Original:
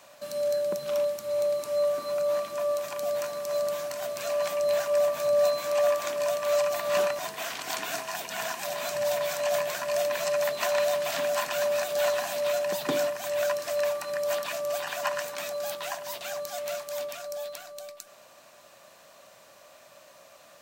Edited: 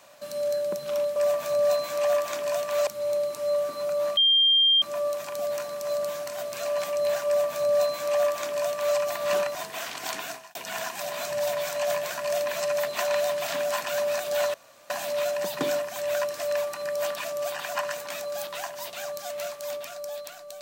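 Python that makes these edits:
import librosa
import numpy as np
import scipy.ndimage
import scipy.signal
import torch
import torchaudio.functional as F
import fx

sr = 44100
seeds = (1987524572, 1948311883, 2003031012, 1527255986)

y = fx.edit(x, sr, fx.insert_tone(at_s=2.46, length_s=0.65, hz=3190.0, db=-16.5),
    fx.duplicate(start_s=4.9, length_s=1.71, to_s=1.16),
    fx.fade_out_span(start_s=7.81, length_s=0.38),
    fx.insert_room_tone(at_s=12.18, length_s=0.36), tone=tone)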